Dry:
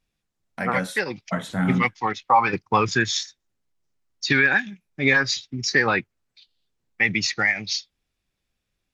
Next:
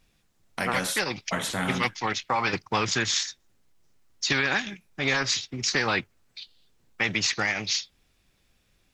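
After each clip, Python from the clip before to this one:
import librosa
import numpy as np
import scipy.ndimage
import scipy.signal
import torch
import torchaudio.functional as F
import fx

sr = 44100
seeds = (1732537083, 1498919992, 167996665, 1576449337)

y = fx.spectral_comp(x, sr, ratio=2.0)
y = F.gain(torch.from_numpy(y), -5.5).numpy()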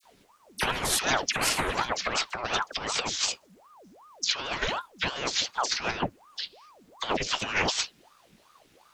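y = fx.dispersion(x, sr, late='lows', ms=54.0, hz=2100.0)
y = fx.over_compress(y, sr, threshold_db=-30.0, ratio=-0.5)
y = fx.ring_lfo(y, sr, carrier_hz=710.0, swing_pct=75, hz=2.7)
y = F.gain(torch.from_numpy(y), 5.5).numpy()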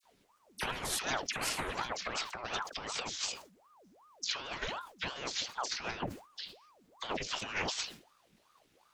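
y = fx.sustainer(x, sr, db_per_s=130.0)
y = F.gain(torch.from_numpy(y), -9.0).numpy()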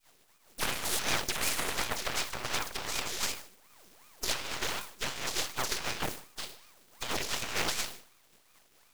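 y = fx.spec_flatten(x, sr, power=0.39)
y = np.maximum(y, 0.0)
y = y + 10.0 ** (-23.5 / 20.0) * np.pad(y, (int(153 * sr / 1000.0), 0))[:len(y)]
y = F.gain(torch.from_numpy(y), 8.0).numpy()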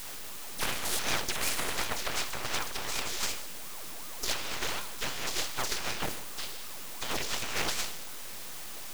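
y = x + 0.5 * 10.0 ** (-31.5 / 20.0) * np.sign(x)
y = F.gain(torch.from_numpy(y), -1.0).numpy()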